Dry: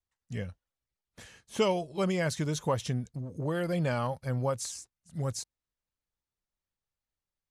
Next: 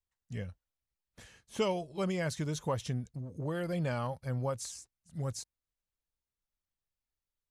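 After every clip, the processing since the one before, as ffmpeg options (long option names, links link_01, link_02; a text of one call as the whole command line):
ffmpeg -i in.wav -af "lowshelf=frequency=67:gain=7,volume=-4.5dB" out.wav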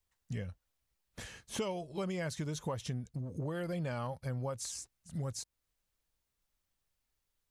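ffmpeg -i in.wav -af "acompressor=threshold=-46dB:ratio=3,volume=8dB" out.wav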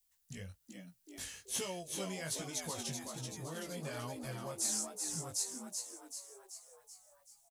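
ffmpeg -i in.wav -filter_complex "[0:a]crystalizer=i=5.5:c=0,asplit=9[link_01][link_02][link_03][link_04][link_05][link_06][link_07][link_08][link_09];[link_02]adelay=382,afreqshift=87,volume=-5dB[link_10];[link_03]adelay=764,afreqshift=174,volume=-9.9dB[link_11];[link_04]adelay=1146,afreqshift=261,volume=-14.8dB[link_12];[link_05]adelay=1528,afreqshift=348,volume=-19.6dB[link_13];[link_06]adelay=1910,afreqshift=435,volume=-24.5dB[link_14];[link_07]adelay=2292,afreqshift=522,volume=-29.4dB[link_15];[link_08]adelay=2674,afreqshift=609,volume=-34.3dB[link_16];[link_09]adelay=3056,afreqshift=696,volume=-39.2dB[link_17];[link_01][link_10][link_11][link_12][link_13][link_14][link_15][link_16][link_17]amix=inputs=9:normalize=0,flanger=delay=16:depth=5.1:speed=1.2,volume=-5dB" out.wav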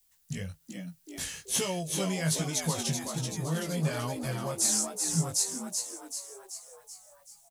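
ffmpeg -i in.wav -af "equalizer=frequency=160:width=5.4:gain=11.5,volume=8.5dB" out.wav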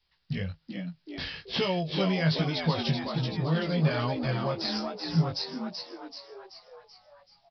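ffmpeg -i in.wav -af "aresample=11025,aresample=44100,volume=4.5dB" out.wav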